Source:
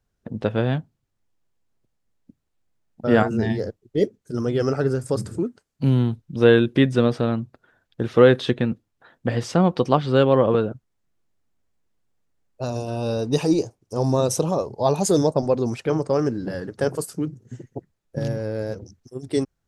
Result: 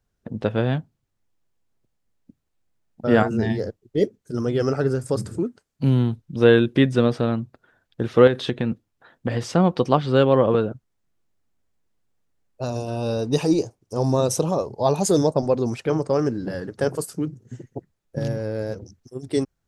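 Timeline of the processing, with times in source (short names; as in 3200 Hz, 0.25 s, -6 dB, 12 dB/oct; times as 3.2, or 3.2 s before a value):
8.27–9.51 compressor, threshold -17 dBFS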